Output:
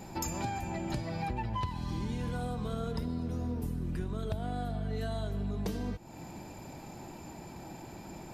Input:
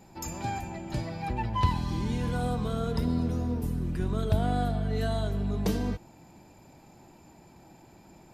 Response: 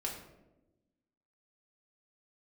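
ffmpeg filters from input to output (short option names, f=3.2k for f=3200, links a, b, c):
-af "acompressor=threshold=-40dB:ratio=8,volume=8dB"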